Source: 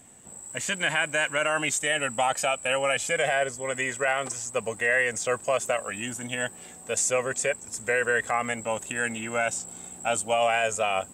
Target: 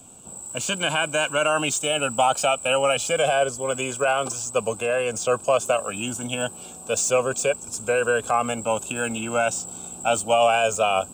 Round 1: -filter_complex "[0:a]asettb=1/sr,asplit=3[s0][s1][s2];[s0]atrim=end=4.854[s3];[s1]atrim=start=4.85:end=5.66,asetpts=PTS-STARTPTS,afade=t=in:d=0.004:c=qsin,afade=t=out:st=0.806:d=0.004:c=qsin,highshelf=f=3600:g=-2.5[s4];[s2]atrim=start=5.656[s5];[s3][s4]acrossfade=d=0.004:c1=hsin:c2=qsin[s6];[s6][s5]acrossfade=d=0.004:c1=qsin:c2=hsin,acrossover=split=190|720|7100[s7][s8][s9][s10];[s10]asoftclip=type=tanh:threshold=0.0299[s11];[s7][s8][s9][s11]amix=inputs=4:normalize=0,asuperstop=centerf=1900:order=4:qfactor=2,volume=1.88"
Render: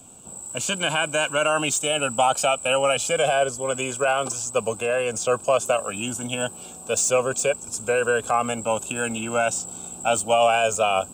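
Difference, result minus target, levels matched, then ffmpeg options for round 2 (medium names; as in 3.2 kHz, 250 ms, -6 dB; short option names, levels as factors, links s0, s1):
saturation: distortion -5 dB
-filter_complex "[0:a]asettb=1/sr,asplit=3[s0][s1][s2];[s0]atrim=end=4.854[s3];[s1]atrim=start=4.85:end=5.66,asetpts=PTS-STARTPTS,afade=t=in:d=0.004:c=qsin,afade=t=out:st=0.806:d=0.004:c=qsin,highshelf=f=3600:g=-2.5[s4];[s2]atrim=start=5.656[s5];[s3][s4]acrossfade=d=0.004:c1=hsin:c2=qsin[s6];[s6][s5]acrossfade=d=0.004:c1=qsin:c2=hsin,acrossover=split=190|720|7100[s7][s8][s9][s10];[s10]asoftclip=type=tanh:threshold=0.0141[s11];[s7][s8][s9][s11]amix=inputs=4:normalize=0,asuperstop=centerf=1900:order=4:qfactor=2,volume=1.88"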